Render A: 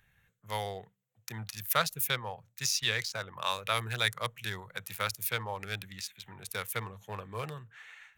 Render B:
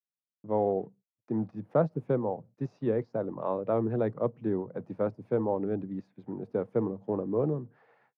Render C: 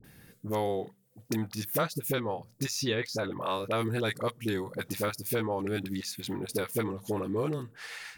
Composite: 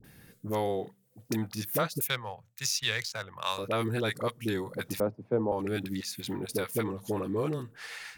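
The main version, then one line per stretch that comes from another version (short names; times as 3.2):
C
2.01–3.58 from A
5–5.52 from B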